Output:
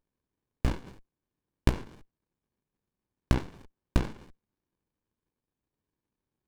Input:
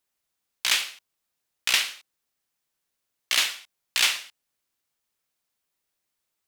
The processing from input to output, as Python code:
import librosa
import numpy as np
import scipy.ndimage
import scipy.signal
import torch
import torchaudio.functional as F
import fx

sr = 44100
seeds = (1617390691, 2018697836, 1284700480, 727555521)

y = fx.high_shelf(x, sr, hz=2700.0, db=-10.0)
y = fx.env_lowpass_down(y, sr, base_hz=930.0, full_db=-26.0)
y = fx.running_max(y, sr, window=65)
y = y * librosa.db_to_amplitude(6.5)